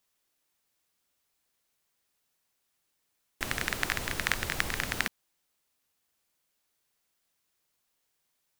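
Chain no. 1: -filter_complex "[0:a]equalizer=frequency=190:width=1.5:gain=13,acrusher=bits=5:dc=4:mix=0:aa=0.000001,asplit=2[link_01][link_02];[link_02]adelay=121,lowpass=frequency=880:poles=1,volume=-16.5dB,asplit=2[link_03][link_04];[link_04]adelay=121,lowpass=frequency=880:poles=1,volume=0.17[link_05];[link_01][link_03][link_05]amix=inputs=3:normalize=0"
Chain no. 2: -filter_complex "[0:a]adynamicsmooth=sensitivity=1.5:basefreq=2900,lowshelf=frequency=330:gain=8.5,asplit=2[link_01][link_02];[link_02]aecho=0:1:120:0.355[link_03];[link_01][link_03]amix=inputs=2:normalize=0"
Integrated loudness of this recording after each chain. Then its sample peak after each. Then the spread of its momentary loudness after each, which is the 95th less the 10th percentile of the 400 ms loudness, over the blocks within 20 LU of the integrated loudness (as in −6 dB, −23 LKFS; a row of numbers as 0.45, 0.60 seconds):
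−31.5, −31.0 LKFS; −3.5, −5.5 dBFS; 4, 5 LU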